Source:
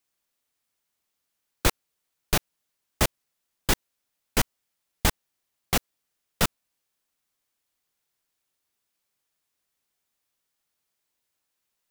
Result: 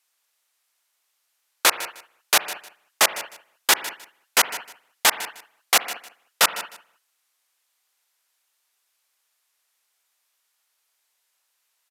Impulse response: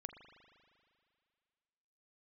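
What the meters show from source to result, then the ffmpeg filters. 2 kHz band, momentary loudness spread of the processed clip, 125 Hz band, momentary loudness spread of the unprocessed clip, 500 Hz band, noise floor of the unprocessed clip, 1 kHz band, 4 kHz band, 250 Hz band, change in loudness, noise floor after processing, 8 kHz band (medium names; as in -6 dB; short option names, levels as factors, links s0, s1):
+9.5 dB, 14 LU, under -20 dB, 1 LU, +2.0 dB, -81 dBFS, +8.0 dB, +9.0 dB, -9.0 dB, +6.0 dB, -73 dBFS, +9.0 dB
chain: -filter_complex "[0:a]highpass=760,aecho=1:1:154|308:0.168|0.0369,asplit=2[s0][s1];[1:a]atrim=start_sample=2205,afade=t=out:st=0.23:d=0.01,atrim=end_sample=10584,asetrate=35721,aresample=44100[s2];[s1][s2]afir=irnorm=-1:irlink=0,volume=2.11[s3];[s0][s3]amix=inputs=2:normalize=0,aresample=32000,aresample=44100,volume=1.26"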